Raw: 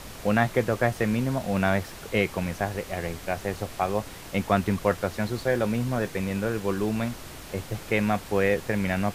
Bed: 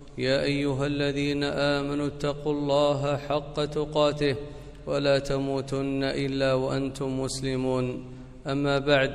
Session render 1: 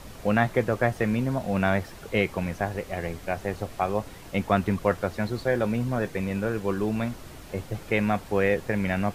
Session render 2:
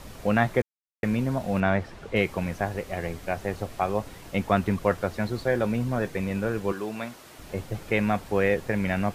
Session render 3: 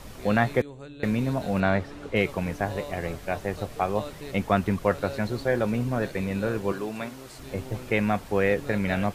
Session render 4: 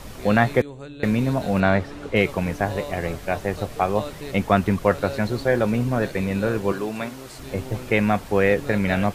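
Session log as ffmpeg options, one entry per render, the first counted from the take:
-af "afftdn=nr=6:nf=-42"
-filter_complex "[0:a]asettb=1/sr,asplit=3[a][b][c];[a]atrim=end=1.604[d];[b]atrim=start=1.6:end=2.16,asetpts=PTS-STARTPTS,afade=t=in:d=0.004:c=qsin,afade=t=out:st=0.556:d=0.004:c=qsin,aemphasis=mode=reproduction:type=50fm[e];[c]atrim=start=2.156[f];[d][e]acrossfade=d=0.004:c1=hsin:c2=qsin[g];[g][f]acrossfade=d=0.004:c1=qsin:c2=hsin,asettb=1/sr,asplit=3[h][i][j];[h]atrim=end=6.724[k];[i]atrim=start=6.72:end=7.39,asetpts=PTS-STARTPTS,afade=t=in:d=0.004:c=qsin,afade=t=out:st=0.666:d=0.004:c=qsin,highpass=f=520:p=1[l];[j]atrim=start=7.386[m];[k][l]acrossfade=d=0.004:c1=hsin:c2=qsin[n];[n][m]acrossfade=d=0.004:c1=qsin:c2=hsin,asplit=3[o][p][q];[o]atrim=end=0.62,asetpts=PTS-STARTPTS,afade=t=out:st=0.616:d=0.004:c=hsin[r];[p]atrim=start=0.62:end=1.03,asetpts=PTS-STARTPTS,volume=0[s];[q]atrim=start=1.03,asetpts=PTS-STARTPTS,afade=t=in:d=0.004:c=hsin[t];[r][s][t]concat=n=3:v=0:a=1"
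-filter_complex "[1:a]volume=-15.5dB[a];[0:a][a]amix=inputs=2:normalize=0"
-af "volume=4.5dB"

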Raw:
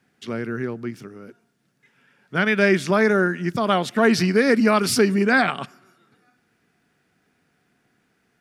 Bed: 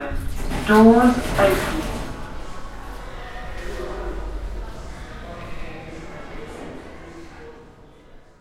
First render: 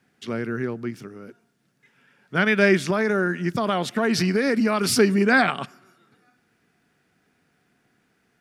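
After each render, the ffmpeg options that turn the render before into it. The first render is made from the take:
-filter_complex "[0:a]asettb=1/sr,asplit=3[a][b][c];[a]atrim=end=2.904[d];[b]atrim=start=2.9:end=4.94,asetpts=PTS-STARTPTS,afade=t=in:d=0.004:c=qsin,afade=t=out:st=2.036:d=0.004:c=qsin,acompressor=threshold=-17dB:ratio=4:attack=3.2:release=140:knee=1:detection=peak[e];[c]atrim=start=4.936[f];[d][e]acrossfade=d=0.004:c1=hsin:c2=qsin[g];[g][f]acrossfade=d=0.004:c1=qsin:c2=hsin"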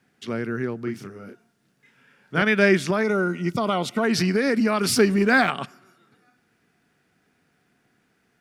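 -filter_complex "[0:a]asettb=1/sr,asplit=3[a][b][c];[a]atrim=end=0.844[d];[b]atrim=start=0.84:end=2.42,asetpts=PTS-STARTPTS,afade=t=in:d=0.004:c=qsin,afade=t=out:st=1.576:d=0.004:c=qsin,asplit=2[e][f];[f]adelay=31,volume=-3.5dB[g];[e][g]amix=inputs=2:normalize=0,atrim=end_sample=69678[h];[c]atrim=start=2.416[i];[d][h]acrossfade=d=0.004:c1=hsin:c2=qsin[j];[j][i]acrossfade=d=0.004:c1=qsin:c2=hsin,asettb=1/sr,asplit=3[k][l][m];[k]atrim=end=3.034[n];[l]atrim=start=3.03:end=4.04,asetpts=PTS-STARTPTS,afade=t=in:d=0.004:c=qsin,afade=t=out:st=1.006:d=0.004:c=qsin,asuperstop=centerf=1700:order=12:qfactor=5.6[o];[m]atrim=start=4.036[p];[n][o]acrossfade=d=0.004:c1=hsin:c2=qsin[q];[q][p]acrossfade=d=0.004:c1=qsin:c2=hsin,asettb=1/sr,asplit=3[r][s][t];[r]atrim=end=4.914[u];[s]atrim=start=4.91:end=5.5,asetpts=PTS-STARTPTS,afade=t=in:d=0.004:c=qsin,afade=t=out:st=0.586:d=0.004:c=qsin,aeval=exprs='sgn(val(0))*max(abs(val(0))-0.00708,0)':c=same[v];[t]atrim=start=5.496[w];[u][v]acrossfade=d=0.004:c1=hsin:c2=qsin[x];[x][w]acrossfade=d=0.004:c1=qsin:c2=hsin"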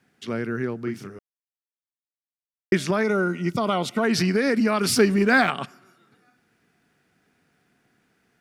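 -filter_complex "[0:a]asplit=3[a][b][c];[a]atrim=end=1.19,asetpts=PTS-STARTPTS,afade=t=out:st=1.186:d=0.004:c=hsin[d];[b]atrim=start=1.19:end=2.72,asetpts=PTS-STARTPTS,volume=0[e];[c]atrim=start=2.72,asetpts=PTS-STARTPTS,afade=t=in:d=0.004:c=hsin[f];[d][e][f]concat=n=3:v=0:a=1"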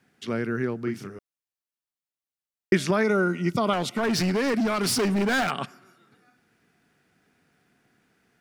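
-filter_complex "[0:a]asettb=1/sr,asplit=3[a][b][c];[a]atrim=end=3.734[d];[b]atrim=start=3.73:end=5.51,asetpts=PTS-STARTPTS,afade=t=in:d=0.004:c=qsin,afade=t=out:st=1.776:d=0.004:c=qsin,asoftclip=type=hard:threshold=-21dB[e];[c]atrim=start=5.506[f];[d][e]acrossfade=d=0.004:c1=hsin:c2=qsin[g];[g][f]acrossfade=d=0.004:c1=qsin:c2=hsin"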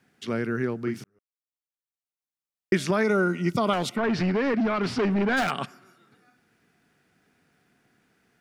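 -filter_complex "[0:a]asplit=3[a][b][c];[a]afade=t=out:st=3.95:d=0.02[d];[b]lowpass=2.8k,afade=t=in:st=3.95:d=0.02,afade=t=out:st=5.36:d=0.02[e];[c]afade=t=in:st=5.36:d=0.02[f];[d][e][f]amix=inputs=3:normalize=0,asplit=2[g][h];[g]atrim=end=1.04,asetpts=PTS-STARTPTS,afade=t=out:st=1.036:d=0.004:c=hsin[i];[h]atrim=start=1.04,asetpts=PTS-STARTPTS,afade=t=in:d=2.11[j];[i][j]concat=n=2:v=0:a=1"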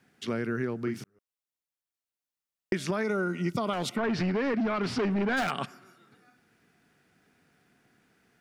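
-af "acompressor=threshold=-27dB:ratio=3"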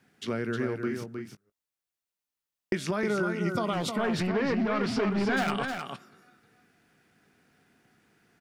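-filter_complex "[0:a]asplit=2[a][b];[b]adelay=19,volume=-14dB[c];[a][c]amix=inputs=2:normalize=0,aecho=1:1:311:0.501"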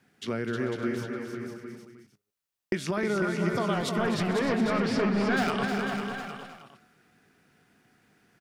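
-af "aecho=1:1:253|441|500|599|717|806:0.251|0.112|0.422|0.158|0.188|0.158"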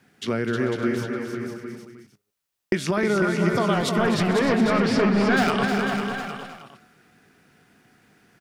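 -af "volume=6dB"

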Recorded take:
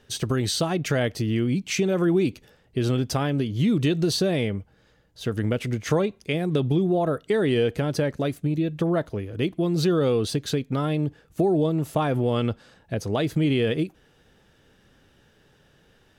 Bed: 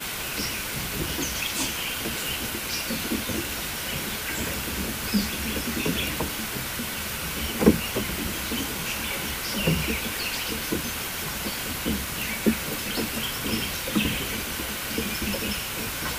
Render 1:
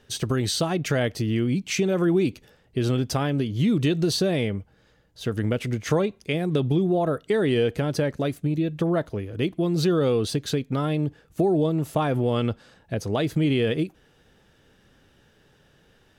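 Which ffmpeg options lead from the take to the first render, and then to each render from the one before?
-af anull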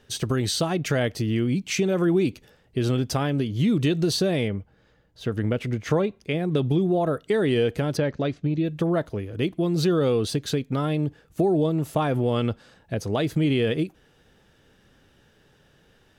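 -filter_complex "[0:a]asettb=1/sr,asplit=3[a][b][c];[a]atrim=end=4.484[d];[b]atrim=start=4.48:end=6.56,asetpts=PTS-STARTPTS,afade=t=in:d=0.004:c=qsin,afade=t=out:st=2.076:d=0.004:c=qsin,equalizer=f=11k:w=0.35:g=-7.5[e];[c]atrim=start=6.556[f];[d][e]acrossfade=d=0.004:c1=hsin:c2=qsin[g];[g][f]acrossfade=d=0.004:c1=qsin:c2=hsin,asettb=1/sr,asplit=3[h][i][j];[h]atrim=end=7.974[k];[i]atrim=start=7.97:end=8.65,asetpts=PTS-STARTPTS,afade=t=in:d=0.004:c=qsin,afade=t=out:st=0.676:d=0.004:c=qsin,lowpass=f=5.5k:w=0.5412,lowpass=f=5.5k:w=1.3066[l];[j]atrim=start=8.646[m];[k][l]acrossfade=d=0.004:c1=hsin:c2=qsin[n];[n][m]acrossfade=d=0.004:c1=qsin:c2=hsin"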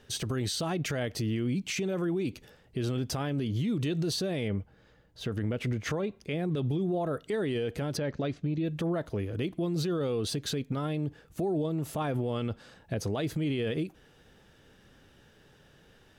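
-af "acompressor=threshold=-24dB:ratio=6,alimiter=limit=-23.5dB:level=0:latency=1:release=38"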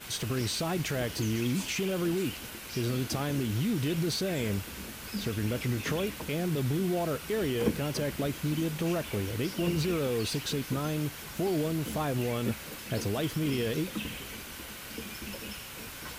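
-filter_complex "[1:a]volume=-12dB[a];[0:a][a]amix=inputs=2:normalize=0"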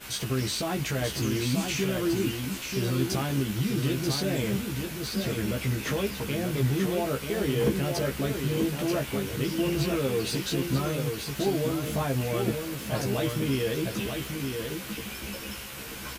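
-filter_complex "[0:a]asplit=2[a][b];[b]adelay=15,volume=-2.5dB[c];[a][c]amix=inputs=2:normalize=0,asplit=2[d][e];[e]aecho=0:1:935:0.531[f];[d][f]amix=inputs=2:normalize=0"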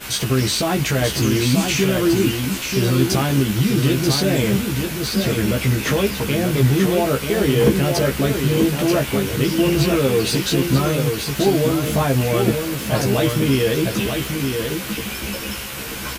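-af "volume=10dB"

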